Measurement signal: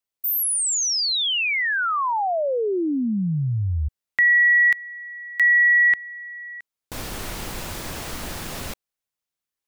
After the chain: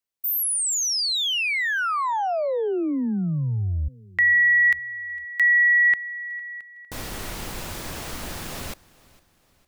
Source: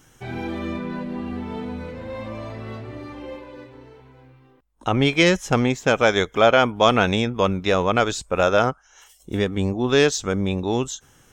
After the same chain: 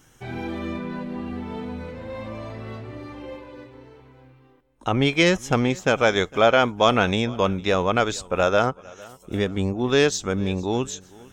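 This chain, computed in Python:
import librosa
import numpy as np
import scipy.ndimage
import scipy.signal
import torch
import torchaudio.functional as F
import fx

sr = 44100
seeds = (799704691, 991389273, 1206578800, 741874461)

y = fx.echo_feedback(x, sr, ms=456, feedback_pct=44, wet_db=-23)
y = y * librosa.db_to_amplitude(-1.5)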